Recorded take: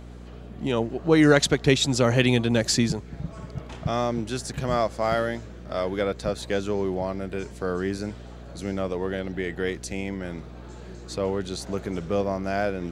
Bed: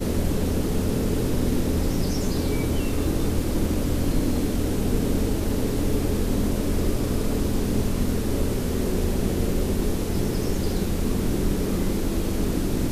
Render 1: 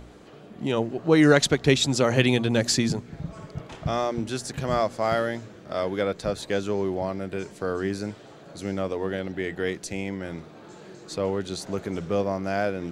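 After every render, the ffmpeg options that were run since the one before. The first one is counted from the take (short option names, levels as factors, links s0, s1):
-af "bandreject=f=60:t=h:w=4,bandreject=f=120:t=h:w=4,bandreject=f=180:t=h:w=4,bandreject=f=240:t=h:w=4"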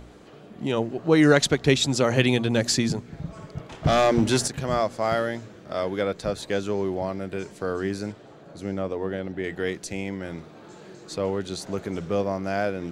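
-filter_complex "[0:a]asettb=1/sr,asplit=3[s0][s1][s2];[s0]atrim=end=3.844[s3];[s1]atrim=start=3.84:end=4.48,asetpts=PTS-STARTPTS,afade=t=in:d=0.004:c=qsin,afade=t=out:st=0.636:d=0.004:c=qsin,aeval=exprs='0.224*sin(PI/2*2*val(0)/0.224)':c=same[s4];[s2]atrim=start=4.476[s5];[s3][s4]acrossfade=d=0.004:c1=hsin:c2=qsin[s6];[s6][s5]acrossfade=d=0.004:c1=qsin:c2=hsin,asettb=1/sr,asplit=3[s7][s8][s9];[s7]atrim=end=8.124[s10];[s8]atrim=start=8.12:end=9.44,asetpts=PTS-STARTPTS,afade=t=in:d=0.004:c=qsin,afade=t=out:st=1.316:d=0.004:c=qsin,highshelf=f=2000:g=-7[s11];[s9]atrim=start=9.436[s12];[s10][s11]acrossfade=d=0.004:c1=hsin:c2=qsin[s13];[s13][s12]acrossfade=d=0.004:c1=qsin:c2=hsin"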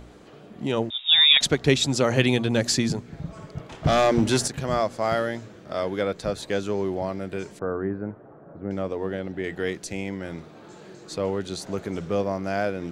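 -filter_complex "[0:a]asettb=1/sr,asplit=3[s0][s1][s2];[s0]atrim=end=0.904[s3];[s1]atrim=start=0.9:end=1.41,asetpts=PTS-STARTPTS,afade=t=in:d=0.004:c=qsin,afade=t=out:st=0.506:d=0.004:c=qsin,lowpass=f=3300:t=q:w=0.5098,lowpass=f=3300:t=q:w=0.6013,lowpass=f=3300:t=q:w=0.9,lowpass=f=3300:t=q:w=2.563,afreqshift=-3900[s4];[s2]atrim=start=1.406[s5];[s3][s4]acrossfade=d=0.004:c1=hsin:c2=qsin[s6];[s6][s5]acrossfade=d=0.004:c1=qsin:c2=hsin,asettb=1/sr,asplit=3[s7][s8][s9];[s7]atrim=end=7.594[s10];[s8]atrim=start=7.59:end=8.71,asetpts=PTS-STARTPTS,afade=t=in:d=0.004:c=qsin,afade=t=out:st=1.116:d=0.004:c=qsin,lowpass=f=1500:w=0.5412,lowpass=f=1500:w=1.3066[s11];[s9]atrim=start=8.706[s12];[s10][s11]acrossfade=d=0.004:c1=hsin:c2=qsin[s13];[s13][s12]acrossfade=d=0.004:c1=qsin:c2=hsin"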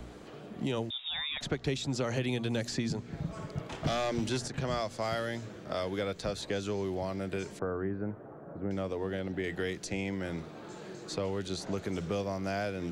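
-filter_complex "[0:a]acrossover=split=120|2400|7800[s0][s1][s2][s3];[s0]acompressor=threshold=0.00891:ratio=4[s4];[s1]acompressor=threshold=0.0251:ratio=4[s5];[s2]acompressor=threshold=0.0112:ratio=4[s6];[s3]acompressor=threshold=0.00112:ratio=4[s7];[s4][s5][s6][s7]amix=inputs=4:normalize=0,acrossover=split=580|1100[s8][s9][s10];[s10]alimiter=level_in=1.68:limit=0.0631:level=0:latency=1:release=14,volume=0.596[s11];[s8][s9][s11]amix=inputs=3:normalize=0"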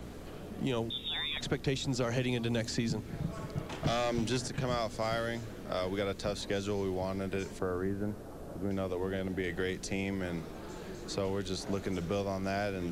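-filter_complex "[1:a]volume=0.0562[s0];[0:a][s0]amix=inputs=2:normalize=0"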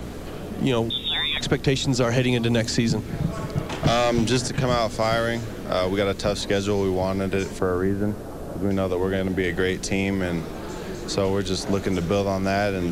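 -af "volume=3.55"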